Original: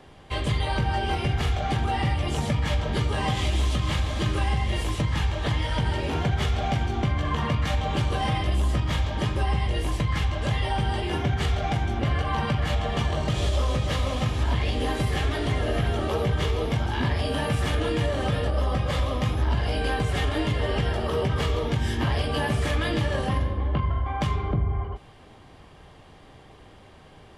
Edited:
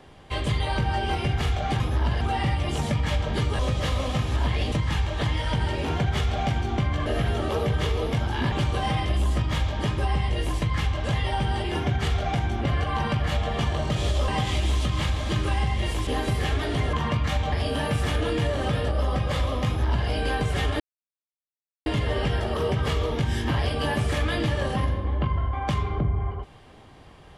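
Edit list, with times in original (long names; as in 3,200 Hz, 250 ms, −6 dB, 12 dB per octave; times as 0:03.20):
0:03.18–0:04.97: swap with 0:13.66–0:14.79
0:07.31–0:07.90: swap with 0:15.65–0:17.11
0:19.26–0:19.67: duplicate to 0:01.80
0:20.39: splice in silence 1.06 s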